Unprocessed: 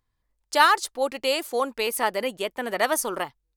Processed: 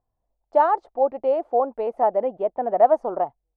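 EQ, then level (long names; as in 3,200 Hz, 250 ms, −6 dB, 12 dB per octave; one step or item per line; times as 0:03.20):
low-pass with resonance 710 Hz, resonance Q 4.9
−2.0 dB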